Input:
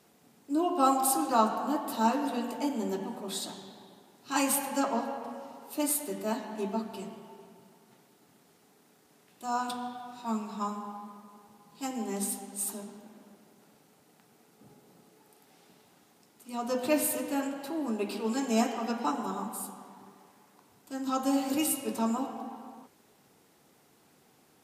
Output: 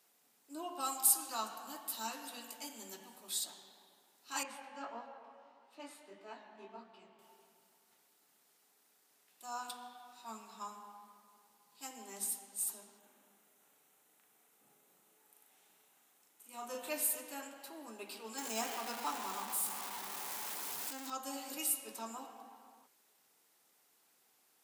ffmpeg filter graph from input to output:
-filter_complex "[0:a]asettb=1/sr,asplit=3[s0][s1][s2];[s0]atrim=end=0.804[s3];[s1]atrim=start=0.8:end=3.44,asetpts=PTS-STARTPTS,afade=t=in:d=0.004:c=qsin,afade=t=out:st=2.636:d=0.004:c=qsin,equalizer=f=600:w=0.34:g=-10,acontrast=25[s4];[s2]atrim=start=3.436[s5];[s3][s4]acrossfade=d=0.004:c1=hsin:c2=qsin[s6];[s6][s5]acrossfade=d=0.004:c1=qsin:c2=hsin,asettb=1/sr,asplit=3[s7][s8][s9];[s7]atrim=end=4.434[s10];[s8]atrim=start=4.43:end=7.19,asetpts=PTS-STARTPTS,afade=t=in:d=0.004:c=qsin,afade=t=out:st=2.756:d=0.004:c=qsin,lowpass=2900,flanger=delay=16:depth=7.3:speed=1.6[s11];[s9]atrim=start=7.186[s12];[s10][s11]acrossfade=d=0.004:c1=hsin:c2=qsin[s13];[s13][s12]acrossfade=d=0.004:c1=qsin:c2=hsin,asettb=1/sr,asplit=3[s14][s15][s16];[s14]atrim=end=12.994[s17];[s15]atrim=start=12.99:end=16.89,asetpts=PTS-STARTPTS,afade=t=in:d=0.004:c=qsin,afade=t=out:st=3.896:d=0.004:c=qsin,equalizer=f=4800:w=3:g=-8.5,asplit=2[s18][s19];[s19]adelay=39,volume=0.708[s20];[s18][s20]amix=inputs=2:normalize=0,atrim=end_sample=171990[s21];[s16]atrim=start=16.886[s22];[s17][s21]acrossfade=d=0.004:c1=hsin:c2=qsin[s23];[s23][s22]acrossfade=d=0.004:c1=qsin:c2=hsin,asettb=1/sr,asplit=3[s24][s25][s26];[s24]atrim=end=18.384[s27];[s25]atrim=start=18.38:end=21.1,asetpts=PTS-STARTPTS,afade=t=in:d=0.004:c=qsin,afade=t=out:st=2.716:d=0.004:c=qsin,aeval=exprs='val(0)+0.5*0.0316*sgn(val(0))':c=same,equalizer=f=920:t=o:w=0.3:g=3[s28];[s26]atrim=start=21.096[s29];[s27][s28]acrossfade=d=0.004:c1=hsin:c2=qsin[s30];[s30][s29]acrossfade=d=0.004:c1=qsin:c2=hsin,highpass=f=1200:p=1,highshelf=f=9000:g=7.5,volume=0.447"

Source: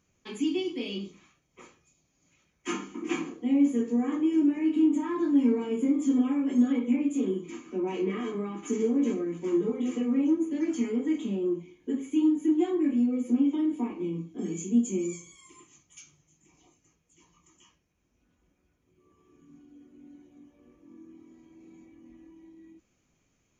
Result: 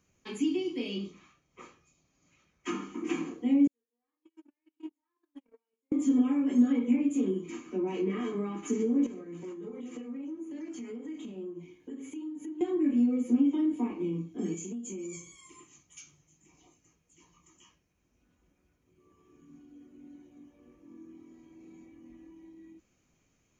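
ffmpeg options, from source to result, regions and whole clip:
-filter_complex "[0:a]asettb=1/sr,asplit=3[s0][s1][s2];[s0]atrim=end=1.014[s3];[s1]atrim=start=1.01:end=2.93,asetpts=PTS-STARTPTS,afade=t=in:d=0.004:c=qsin,afade=t=out:st=1.916:d=0.004:c=qsin,lowpass=6600,equalizer=f=1200:t=o:w=0.23:g=5.5[s4];[s2]atrim=start=2.926[s5];[s3][s4]acrossfade=d=0.004:c1=hsin:c2=qsin[s6];[s6][s5]acrossfade=d=0.004:c1=qsin:c2=hsin,asettb=1/sr,asplit=3[s7][s8][s9];[s7]atrim=end=3.674[s10];[s8]atrim=start=3.67:end=5.92,asetpts=PTS-STARTPTS,afade=t=in:d=0.004:c=qsin,afade=t=out:st=2.246:d=0.004:c=qsin,highpass=580,agate=range=0.00316:threshold=0.0316:ratio=16:release=100:detection=peak[s11];[s9]atrim=start=5.916[s12];[s10][s11]acrossfade=d=0.004:c1=hsin:c2=qsin[s13];[s13][s12]acrossfade=d=0.004:c1=qsin:c2=hsin,asettb=1/sr,asplit=3[s14][s15][s16];[s14]atrim=end=9.064[s17];[s15]atrim=start=9.06:end=12.61,asetpts=PTS-STARTPTS,afade=t=in:d=0.004:c=qsin,afade=t=out:st=3.546:d=0.004:c=qsin,highpass=50,acompressor=threshold=0.0126:ratio=5:attack=3.2:release=140:knee=1:detection=peak,bandreject=f=50:t=h:w=6,bandreject=f=100:t=h:w=6,bandreject=f=150:t=h:w=6,bandreject=f=200:t=h:w=6,bandreject=f=250:t=h:w=6,bandreject=f=300:t=h:w=6,bandreject=f=350:t=h:w=6,bandreject=f=400:t=h:w=6,bandreject=f=450:t=h:w=6[s18];[s16]atrim=start=12.606[s19];[s17][s18]acrossfade=d=0.004:c1=hsin:c2=qsin[s20];[s20][s19]acrossfade=d=0.004:c1=qsin:c2=hsin,asettb=1/sr,asplit=3[s21][s22][s23];[s21]atrim=end=14.544[s24];[s22]atrim=start=14.54:end=15.17,asetpts=PTS-STARTPTS,afade=t=in:d=0.004:c=qsin,afade=t=out:st=0.626:d=0.004:c=qsin,lowshelf=f=130:g=-9,acompressor=threshold=0.0178:ratio=10:attack=3.2:release=140:knee=1:detection=peak[s25];[s23]atrim=start=15.166[s26];[s24][s25]acrossfade=d=0.004:c1=hsin:c2=qsin[s27];[s27][s26]acrossfade=d=0.004:c1=qsin:c2=hsin,bandreject=f=3400:w=30,acrossover=split=380[s28][s29];[s29]acompressor=threshold=0.0158:ratio=6[s30];[s28][s30]amix=inputs=2:normalize=0"

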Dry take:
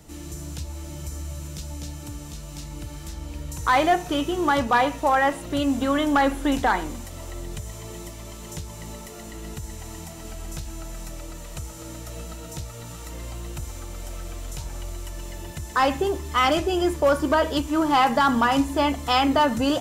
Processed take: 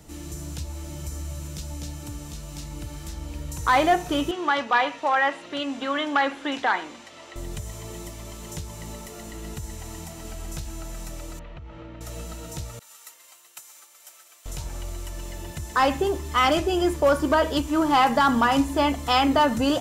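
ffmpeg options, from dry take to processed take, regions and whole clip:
-filter_complex "[0:a]asettb=1/sr,asplit=3[s0][s1][s2];[s0]atrim=end=4.314[s3];[s1]atrim=start=4.31:end=7.36,asetpts=PTS-STARTPTS,afade=t=in:d=0.004:c=qsin,afade=t=out:st=3.046:d=0.004:c=qsin,highpass=260,lowpass=3300,tiltshelf=f=1300:g=-6[s4];[s2]atrim=start=7.356[s5];[s3][s4]acrossfade=d=0.004:c1=hsin:c2=qsin[s6];[s6][s5]acrossfade=d=0.004:c1=qsin:c2=hsin,asettb=1/sr,asplit=3[s7][s8][s9];[s7]atrim=end=11.394[s10];[s8]atrim=start=11.39:end=12.01,asetpts=PTS-STARTPTS,afade=t=in:d=0.004:c=qsin,afade=t=out:st=0.616:d=0.004:c=qsin,lowpass=f=3000:w=0.5412,lowpass=f=3000:w=1.3066,acompressor=threshold=0.0158:ratio=6:attack=3.2:release=140:knee=1:detection=peak[s11];[s9]atrim=start=12.006[s12];[s10][s11]acrossfade=d=0.004:c1=hsin:c2=qsin[s13];[s13][s12]acrossfade=d=0.004:c1=qsin:c2=hsin,asettb=1/sr,asplit=3[s14][s15][s16];[s14]atrim=end=12.794[s17];[s15]atrim=start=12.79:end=14.46,asetpts=PTS-STARTPTS,afade=t=in:d=0.004:c=qsin,afade=t=out:st=1.666:d=0.004:c=qsin,highpass=1100,agate=range=0.0224:threshold=0.0112:ratio=3:release=100:detection=peak,highshelf=f=8700:g=9[s18];[s16]atrim=start=14.456[s19];[s17][s18]acrossfade=d=0.004:c1=hsin:c2=qsin[s20];[s20][s19]acrossfade=d=0.004:c1=qsin:c2=hsin"

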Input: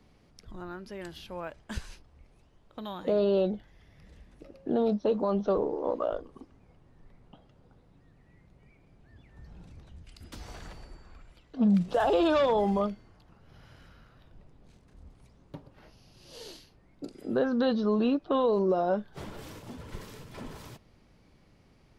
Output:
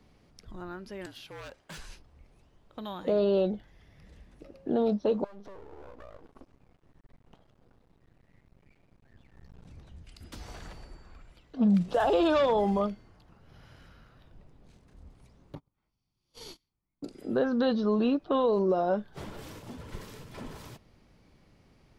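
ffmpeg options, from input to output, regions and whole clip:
-filter_complex "[0:a]asettb=1/sr,asplit=3[s0][s1][s2];[s0]atrim=end=1.064[s3];[s1]atrim=start=1.06:end=1.79,asetpts=PTS-STARTPTS,afade=t=in:d=0.004:c=qsin,afade=t=out:st=0.726:d=0.004:c=qsin,highpass=f=360:p=1,aeval=exprs='0.0133*(abs(mod(val(0)/0.0133+3,4)-2)-1)':c=same,afreqshift=-51[s4];[s2]atrim=start=1.786[s5];[s3][s4]acrossfade=d=0.004:c1=hsin:c2=qsin[s6];[s6][s5]acrossfade=d=0.004:c1=qsin:c2=hsin,asettb=1/sr,asplit=3[s7][s8][s9];[s7]atrim=end=5.244[s10];[s8]atrim=start=5.24:end=9.65,asetpts=PTS-STARTPTS,afade=t=in:d=0.004:c=qsin,afade=t=out:st=4.406:d=0.004:c=qsin,acompressor=threshold=0.0112:ratio=10:attack=3.2:release=140:knee=1:detection=peak,aeval=exprs='max(val(0),0)':c=same[s11];[s9]atrim=start=9.646[s12];[s10][s11]acrossfade=d=0.004:c1=hsin:c2=qsin[s13];[s13][s12]acrossfade=d=0.004:c1=qsin:c2=hsin,asettb=1/sr,asplit=3[s14][s15][s16];[s14]atrim=end=15.554[s17];[s15]atrim=start=15.55:end=17.04,asetpts=PTS-STARTPTS,afade=t=in:d=0.004:c=qsin,afade=t=out:st=1.486:d=0.004:c=qsin,agate=range=0.0398:threshold=0.00447:ratio=16:release=100:detection=peak,aecho=1:1:0.9:0.52,atrim=end_sample=65709[s18];[s16]atrim=start=17.036[s19];[s17][s18]acrossfade=d=0.004:c1=hsin:c2=qsin[s20];[s20][s19]acrossfade=d=0.004:c1=qsin:c2=hsin"

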